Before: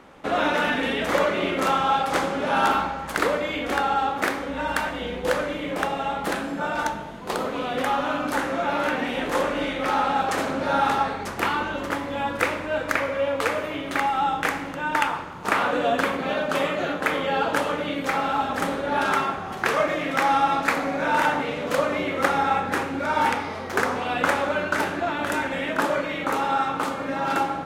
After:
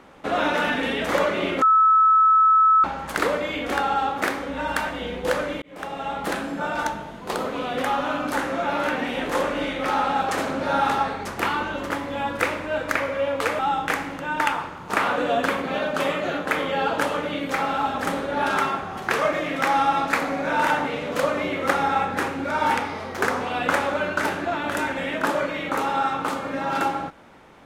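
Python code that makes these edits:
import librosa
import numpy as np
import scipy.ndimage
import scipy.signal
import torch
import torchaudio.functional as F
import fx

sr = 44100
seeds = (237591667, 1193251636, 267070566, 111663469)

y = fx.edit(x, sr, fx.bleep(start_s=1.62, length_s=1.22, hz=1300.0, db=-12.5),
    fx.fade_in_span(start_s=5.62, length_s=0.8, curve='qsin'),
    fx.cut(start_s=13.59, length_s=0.55), tone=tone)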